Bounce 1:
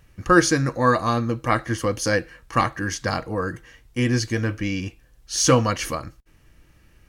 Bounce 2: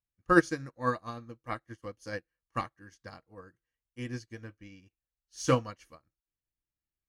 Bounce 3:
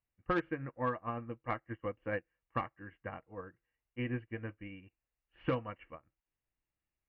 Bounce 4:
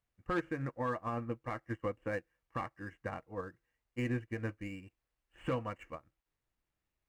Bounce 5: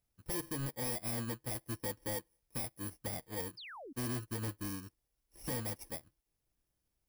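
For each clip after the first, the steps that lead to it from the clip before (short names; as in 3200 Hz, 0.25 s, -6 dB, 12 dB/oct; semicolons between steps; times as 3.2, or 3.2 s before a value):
upward expander 2.5:1, over -36 dBFS; gain -4.5 dB
rippled Chebyshev low-pass 2900 Hz, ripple 3 dB; soft clip -18.5 dBFS, distortion -13 dB; compressor 4:1, threshold -37 dBFS, peak gain reduction 12.5 dB; gain +5.5 dB
median filter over 9 samples; limiter -31 dBFS, peak gain reduction 10.5 dB; gain +4.5 dB
FFT order left unsorted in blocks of 32 samples; hard clip -38.5 dBFS, distortion -6 dB; painted sound fall, 3.57–3.93, 240–5300 Hz -52 dBFS; gain +3.5 dB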